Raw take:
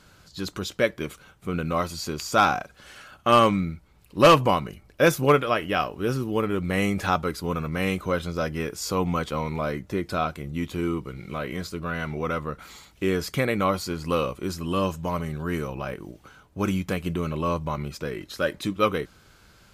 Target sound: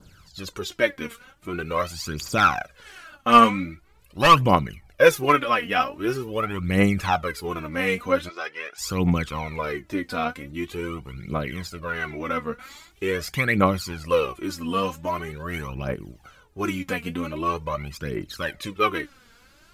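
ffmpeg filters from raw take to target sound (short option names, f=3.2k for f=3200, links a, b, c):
-filter_complex "[0:a]adynamicequalizer=threshold=0.01:dfrequency=2000:dqfactor=1.3:tfrequency=2000:tqfactor=1.3:attack=5:release=100:ratio=0.375:range=3:mode=boostabove:tftype=bell,asplit=3[a][b][c];[a]afade=t=out:st=8.28:d=0.02[d];[b]highpass=680,lowpass=4.5k,afade=t=in:st=8.28:d=0.02,afade=t=out:st=8.77:d=0.02[e];[c]afade=t=in:st=8.77:d=0.02[f];[d][e][f]amix=inputs=3:normalize=0,aphaser=in_gain=1:out_gain=1:delay=4.4:decay=0.7:speed=0.44:type=triangular,volume=-3dB"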